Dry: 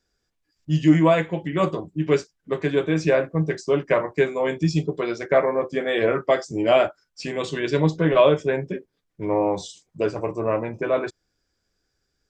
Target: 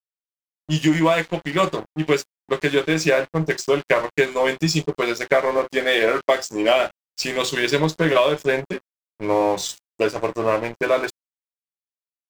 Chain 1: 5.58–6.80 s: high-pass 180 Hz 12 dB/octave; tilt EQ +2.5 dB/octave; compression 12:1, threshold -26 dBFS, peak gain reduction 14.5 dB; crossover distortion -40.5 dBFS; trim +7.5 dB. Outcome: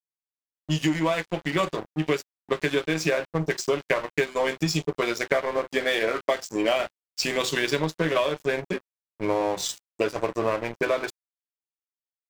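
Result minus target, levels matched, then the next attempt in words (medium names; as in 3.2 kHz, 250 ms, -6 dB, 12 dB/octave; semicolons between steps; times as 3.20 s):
compression: peak gain reduction +6 dB
5.58–6.80 s: high-pass 180 Hz 12 dB/octave; tilt EQ +2.5 dB/octave; compression 12:1, threshold -19.5 dBFS, peak gain reduction 8.5 dB; crossover distortion -40.5 dBFS; trim +7.5 dB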